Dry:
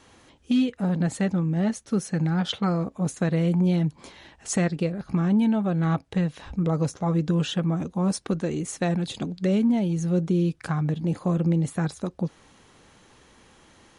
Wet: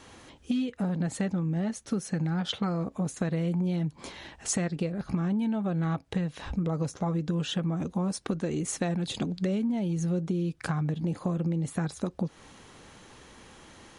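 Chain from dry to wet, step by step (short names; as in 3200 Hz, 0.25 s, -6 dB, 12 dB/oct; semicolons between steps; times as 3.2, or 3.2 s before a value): compressor 6:1, threshold -30 dBFS, peak gain reduction 11.5 dB; gain +3.5 dB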